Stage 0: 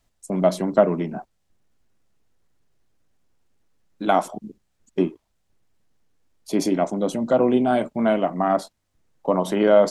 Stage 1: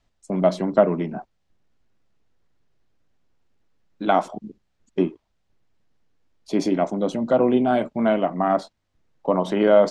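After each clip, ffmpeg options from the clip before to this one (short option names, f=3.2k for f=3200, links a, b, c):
-af "lowpass=5.2k"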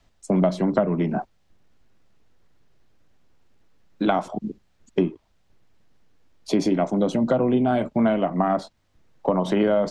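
-filter_complex "[0:a]acrossover=split=150[a][b];[b]acompressor=threshold=-27dB:ratio=5[c];[a][c]amix=inputs=2:normalize=0,volume=7.5dB"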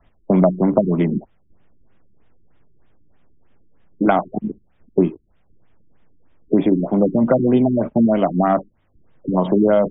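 -af "afftfilt=real='re*lt(b*sr/1024,380*pow(3800/380,0.5+0.5*sin(2*PI*3.2*pts/sr)))':imag='im*lt(b*sr/1024,380*pow(3800/380,0.5+0.5*sin(2*PI*3.2*pts/sr)))':win_size=1024:overlap=0.75,volume=5.5dB"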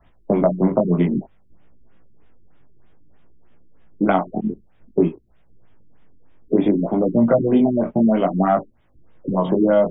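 -filter_complex "[0:a]asplit=2[a][b];[b]acompressor=threshold=-23dB:ratio=6,volume=-2dB[c];[a][c]amix=inputs=2:normalize=0,flanger=delay=16.5:depth=6.4:speed=0.56"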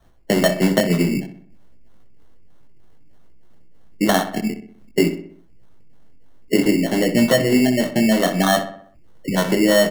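-filter_complex "[0:a]acrusher=samples=18:mix=1:aa=0.000001,asplit=2[a][b];[b]adelay=63,lowpass=f=3k:p=1,volume=-10dB,asplit=2[c][d];[d]adelay=63,lowpass=f=3k:p=1,volume=0.51,asplit=2[e][f];[f]adelay=63,lowpass=f=3k:p=1,volume=0.51,asplit=2[g][h];[h]adelay=63,lowpass=f=3k:p=1,volume=0.51,asplit=2[i][j];[j]adelay=63,lowpass=f=3k:p=1,volume=0.51,asplit=2[k][l];[l]adelay=63,lowpass=f=3k:p=1,volume=0.51[m];[a][c][e][g][i][k][m]amix=inputs=7:normalize=0"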